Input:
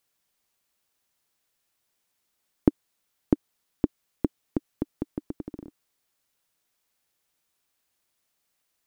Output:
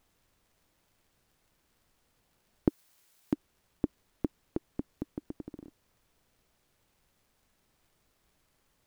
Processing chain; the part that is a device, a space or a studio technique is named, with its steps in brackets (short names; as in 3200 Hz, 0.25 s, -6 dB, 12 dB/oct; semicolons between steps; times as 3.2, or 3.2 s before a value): warped LP (record warp 33 1/3 rpm, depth 250 cents; crackle; pink noise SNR 31 dB); 2.68–3.33 tilt +3 dB/oct; gain -6 dB